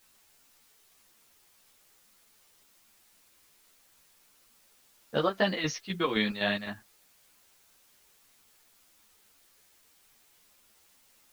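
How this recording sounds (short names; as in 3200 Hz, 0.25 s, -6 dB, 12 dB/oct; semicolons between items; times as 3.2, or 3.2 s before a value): chopped level 3.9 Hz, depth 60%, duty 60%; a quantiser's noise floor 10-bit, dither triangular; a shimmering, thickened sound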